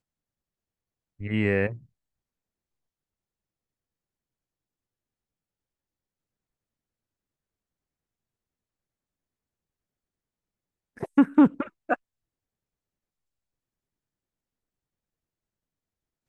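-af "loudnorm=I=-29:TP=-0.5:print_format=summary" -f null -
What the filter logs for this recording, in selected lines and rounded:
Input Integrated:    -24.2 LUFS
Input True Peak:      -8.3 dBTP
Input LRA:             5.7 LU
Input Threshold:     -35.4 LUFS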